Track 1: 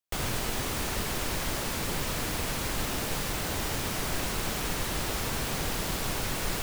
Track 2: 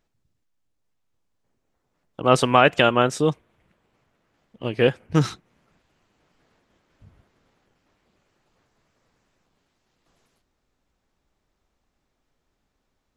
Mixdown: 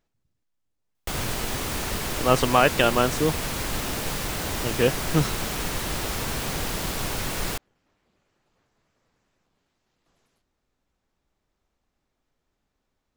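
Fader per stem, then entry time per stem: +2.5, −3.0 decibels; 0.95, 0.00 seconds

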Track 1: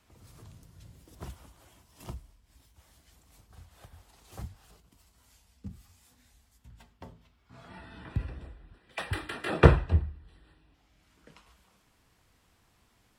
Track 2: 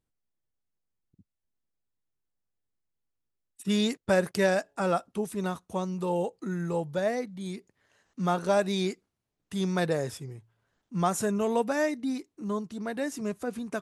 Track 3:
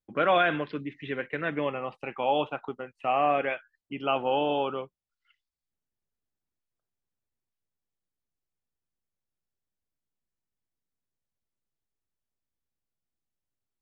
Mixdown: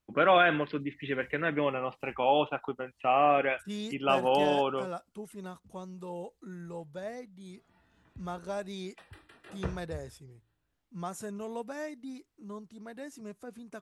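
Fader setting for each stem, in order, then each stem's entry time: −19.0, −11.5, +0.5 decibels; 0.00, 0.00, 0.00 seconds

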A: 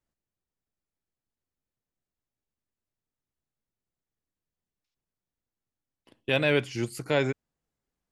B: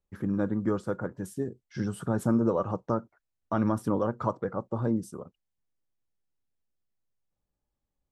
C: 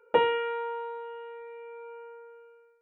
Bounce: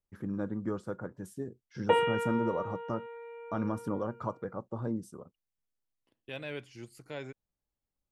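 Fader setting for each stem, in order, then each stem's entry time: −16.0, −6.5, −2.0 decibels; 0.00, 0.00, 1.75 seconds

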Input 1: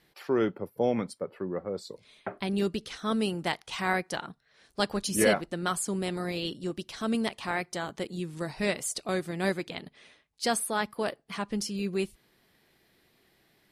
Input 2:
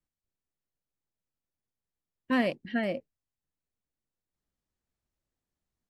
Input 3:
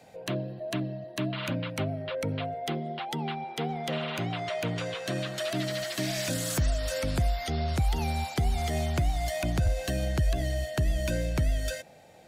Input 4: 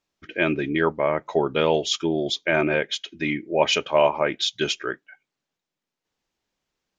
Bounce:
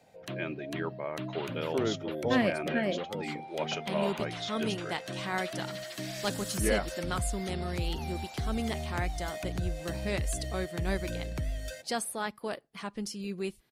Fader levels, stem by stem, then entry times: −5.0, −0.5, −7.5, −14.5 decibels; 1.45, 0.00, 0.00, 0.00 seconds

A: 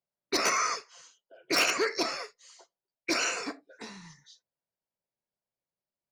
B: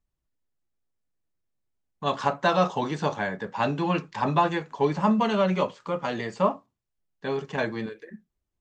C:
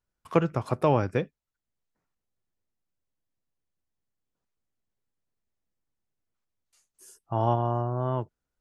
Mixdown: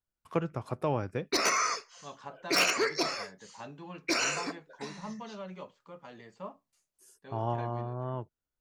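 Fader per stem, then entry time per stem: −0.5, −19.5, −7.5 decibels; 1.00, 0.00, 0.00 seconds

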